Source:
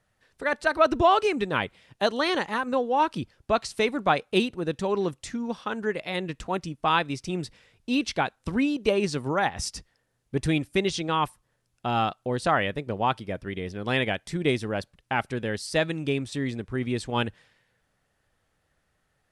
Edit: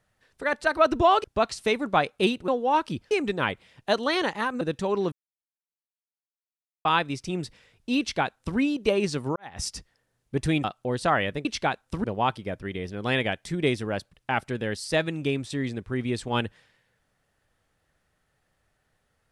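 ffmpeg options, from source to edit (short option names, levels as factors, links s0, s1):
-filter_complex "[0:a]asplit=11[s0][s1][s2][s3][s4][s5][s6][s7][s8][s9][s10];[s0]atrim=end=1.242[s11];[s1]atrim=start=3.368:end=4.612[s12];[s2]atrim=start=2.738:end=3.372[s13];[s3]atrim=start=1.238:end=2.742[s14];[s4]atrim=start=4.608:end=5.12,asetpts=PTS-STARTPTS,afade=t=out:st=0.508:d=0.004:c=hsin[s15];[s5]atrim=start=5.12:end=6.85,asetpts=PTS-STARTPTS,volume=0[s16];[s6]atrim=start=6.85:end=9.36,asetpts=PTS-STARTPTS,afade=t=in:d=0.004:c=hsin,afade=t=out:st=2.506:d=0.004:c=hsin[s17];[s7]atrim=start=9.36:end=10.642,asetpts=PTS-STARTPTS,afade=t=in:d=0.25:c=qua[s18];[s8]atrim=start=12.048:end=12.862[s19];[s9]atrim=start=7.988:end=8.582[s20];[s10]atrim=start=12.858[s21];[s11][s12]acrossfade=d=0.004:c1=hsin:c2=hsin[s22];[s22][s13]acrossfade=d=0.004:c1=hsin:c2=hsin[s23];[s23][s14]acrossfade=d=0.004:c1=hsin:c2=hsin[s24];[s15][s16][s17][s18]concat=n=4:v=0:a=1[s25];[s24][s25]acrossfade=d=0.004:c1=hsin:c2=hsin[s26];[s26][s19]acrossfade=d=0.004:c1=hsin:c2=hsin[s27];[s27][s20]acrossfade=d=0.004:c1=hsin:c2=hsin[s28];[s28][s21]acrossfade=d=0.004:c1=hsin:c2=hsin"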